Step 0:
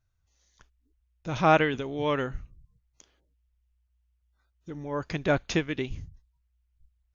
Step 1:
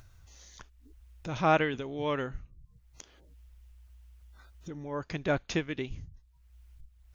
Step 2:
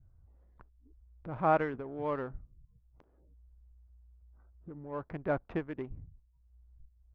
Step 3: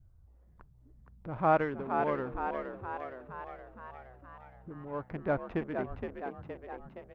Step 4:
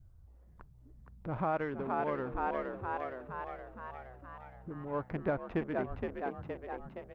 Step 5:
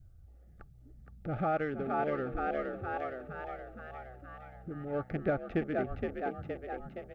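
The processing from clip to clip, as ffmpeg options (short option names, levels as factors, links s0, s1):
-af "acompressor=mode=upward:threshold=0.0224:ratio=2.5,volume=0.631"
-af "adynamicequalizer=threshold=0.00891:dfrequency=900:dqfactor=0.81:tfrequency=900:tqfactor=0.81:attack=5:release=100:ratio=0.375:range=2:mode=boostabove:tftype=bell,adynamicsmooth=sensitivity=6.5:basefreq=730,lowpass=1500,volume=0.596"
-filter_complex "[0:a]asplit=9[s0][s1][s2][s3][s4][s5][s6][s7][s8];[s1]adelay=468,afreqshift=63,volume=0.501[s9];[s2]adelay=936,afreqshift=126,volume=0.302[s10];[s3]adelay=1404,afreqshift=189,volume=0.18[s11];[s4]adelay=1872,afreqshift=252,volume=0.108[s12];[s5]adelay=2340,afreqshift=315,volume=0.0653[s13];[s6]adelay=2808,afreqshift=378,volume=0.0389[s14];[s7]adelay=3276,afreqshift=441,volume=0.0234[s15];[s8]adelay=3744,afreqshift=504,volume=0.014[s16];[s0][s9][s10][s11][s12][s13][s14][s15][s16]amix=inputs=9:normalize=0,volume=1.12"
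-af "alimiter=limit=0.0631:level=0:latency=1:release=355,volume=1.26"
-af "asuperstop=centerf=1000:order=20:qfactor=3.7,volume=1.26"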